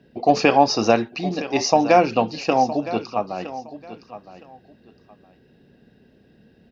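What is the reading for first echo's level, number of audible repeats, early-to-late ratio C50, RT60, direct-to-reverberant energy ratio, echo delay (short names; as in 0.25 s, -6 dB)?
-14.5 dB, 2, none, none, none, 0.964 s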